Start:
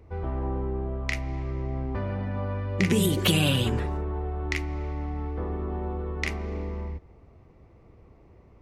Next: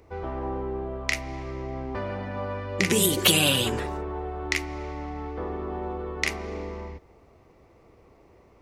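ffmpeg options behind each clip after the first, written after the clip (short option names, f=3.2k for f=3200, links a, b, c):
-af "bass=f=250:g=-10,treble=f=4k:g=6,volume=3.5dB"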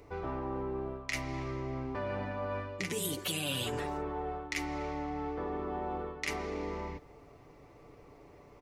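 -af "aecho=1:1:6.9:0.46,areverse,acompressor=threshold=-33dB:ratio=6,areverse"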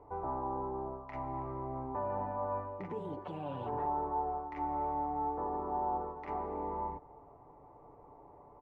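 -af "lowpass=f=900:t=q:w=4.9,volume=-5dB"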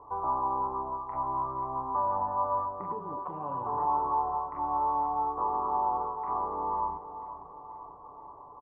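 -af "lowpass=f=1.1k:t=q:w=10,aecho=1:1:493|986|1479|1972|2465|2958:0.251|0.138|0.076|0.0418|0.023|0.0126,volume=-2dB"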